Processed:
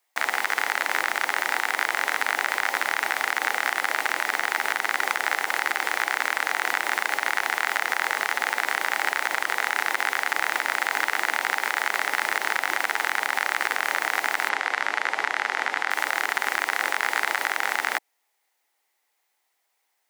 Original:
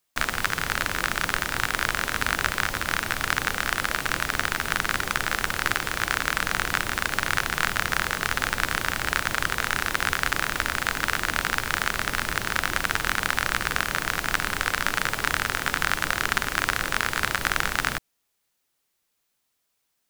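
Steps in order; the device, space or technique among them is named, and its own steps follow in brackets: laptop speaker (high-pass 320 Hz 24 dB/octave; peaking EQ 820 Hz +11.5 dB 0.55 oct; peaking EQ 2 kHz +9.5 dB 0.39 oct; peak limiter -7.5 dBFS, peak gain reduction 7.5 dB); 14.49–15.91 s: distance through air 74 m

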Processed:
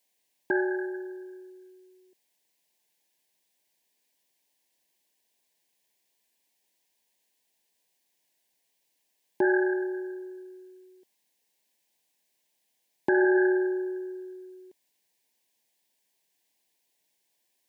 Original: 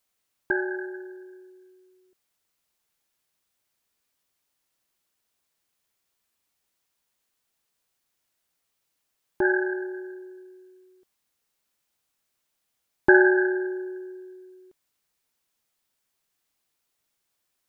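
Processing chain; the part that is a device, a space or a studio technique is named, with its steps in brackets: PA system with an anti-feedback notch (high-pass 190 Hz 12 dB/octave; Butterworth band-stop 1.3 kHz, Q 2.1; peak limiter -17.5 dBFS, peak gain reduction 10.5 dB); trim +2.5 dB

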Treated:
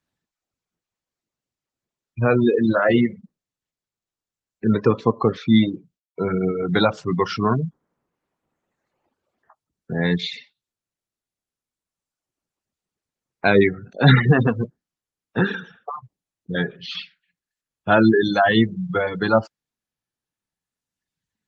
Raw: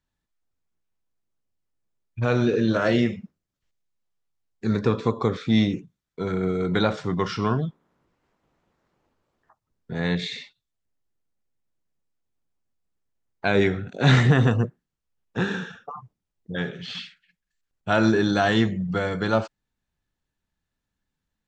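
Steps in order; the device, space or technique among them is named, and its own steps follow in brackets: 5.61–7.04 s: gate with hold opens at -43 dBFS; reverb removal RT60 1.8 s; noise-suppressed video call (high-pass 110 Hz 12 dB/octave; spectral gate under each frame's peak -25 dB strong; trim +6 dB; Opus 20 kbps 48 kHz)

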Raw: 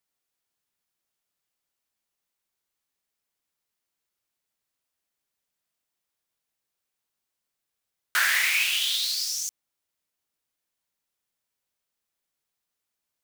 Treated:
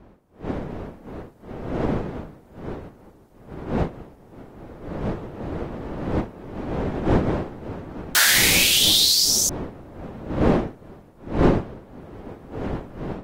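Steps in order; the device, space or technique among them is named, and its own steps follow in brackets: high-order bell 1.7 kHz -8.5 dB; smartphone video outdoors (wind noise 400 Hz -38 dBFS; level rider gain up to 13.5 dB; trim -2 dB; AAC 48 kbps 48 kHz)

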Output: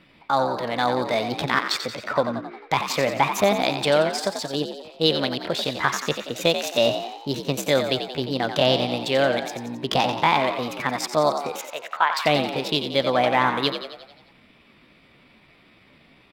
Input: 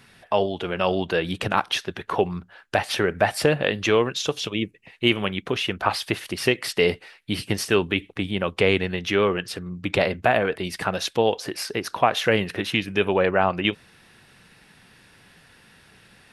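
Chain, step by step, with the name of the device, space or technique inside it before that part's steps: local Wiener filter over 9 samples; 11.63–12.18 s: three-band isolator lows -23 dB, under 410 Hz, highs -22 dB, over 2.8 kHz; chipmunk voice (pitch shift +5 st); frequency-shifting echo 89 ms, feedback 55%, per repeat +58 Hz, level -8.5 dB

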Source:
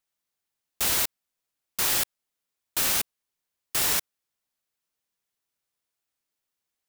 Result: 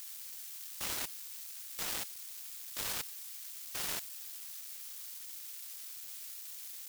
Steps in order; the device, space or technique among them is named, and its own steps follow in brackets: budget class-D amplifier (dead-time distortion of 0.068 ms; zero-crossing glitches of -25.5 dBFS); trim -6 dB

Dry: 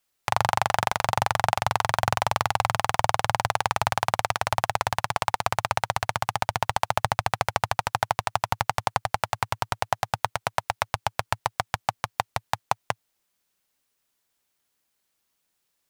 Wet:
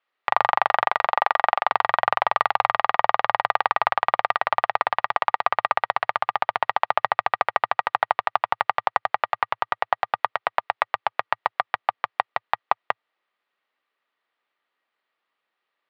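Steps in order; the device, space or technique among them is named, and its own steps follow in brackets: low-pass 4.3 kHz 24 dB/octave; 1.06–1.72 s: high-pass 250 Hz 12 dB/octave; tin-can telephone (band-pass 410–2900 Hz; small resonant body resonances 1.2/1.9 kHz, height 8 dB, ringing for 30 ms); trim +3 dB

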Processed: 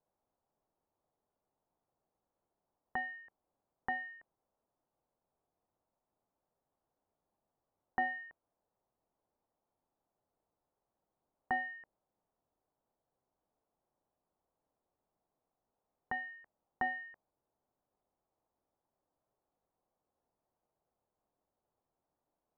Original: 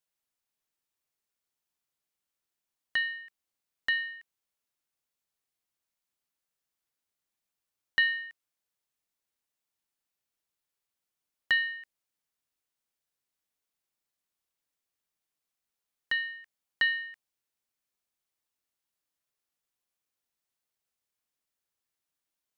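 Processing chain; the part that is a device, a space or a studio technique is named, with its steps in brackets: overdriven synthesiser ladder filter (saturation -24.5 dBFS, distortion -12 dB; four-pole ladder low-pass 980 Hz, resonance 35%); trim +17.5 dB

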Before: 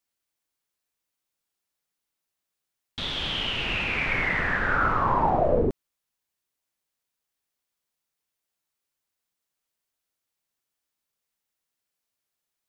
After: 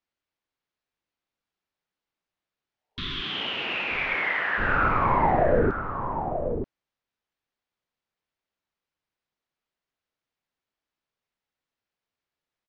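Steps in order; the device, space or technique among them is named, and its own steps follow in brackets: 3.20–4.57 s: high-pass 190 Hz -> 660 Hz 12 dB/octave; 2.74–3.37 s: spectral replace 420–970 Hz both; shout across a valley (distance through air 180 m; echo from a far wall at 160 m, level -7 dB); trim +1.5 dB

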